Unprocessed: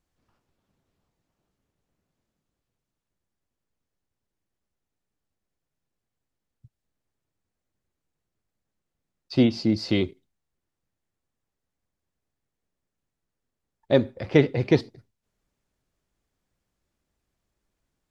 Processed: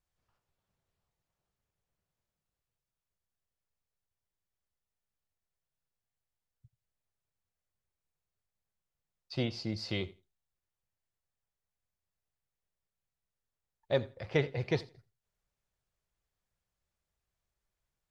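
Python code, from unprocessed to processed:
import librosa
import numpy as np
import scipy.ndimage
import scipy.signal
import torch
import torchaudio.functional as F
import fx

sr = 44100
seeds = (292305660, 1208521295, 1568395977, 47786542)

p1 = fx.peak_eq(x, sr, hz=270.0, db=-12.0, octaves=0.94)
p2 = p1 + fx.echo_feedback(p1, sr, ms=85, feedback_pct=17, wet_db=-21.0, dry=0)
y = p2 * 10.0 ** (-7.0 / 20.0)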